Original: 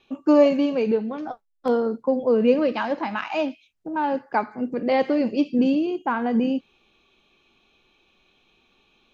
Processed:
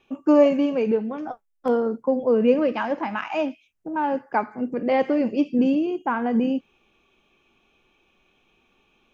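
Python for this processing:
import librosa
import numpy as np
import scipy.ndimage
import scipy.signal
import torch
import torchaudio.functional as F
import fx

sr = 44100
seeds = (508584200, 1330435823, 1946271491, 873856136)

y = fx.peak_eq(x, sr, hz=4100.0, db=-12.0, octaves=0.43)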